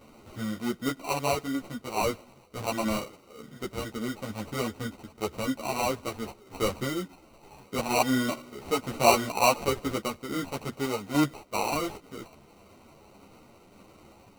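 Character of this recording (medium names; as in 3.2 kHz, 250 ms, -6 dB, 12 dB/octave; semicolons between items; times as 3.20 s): aliases and images of a low sample rate 1.7 kHz, jitter 0%; random-step tremolo; a shimmering, thickened sound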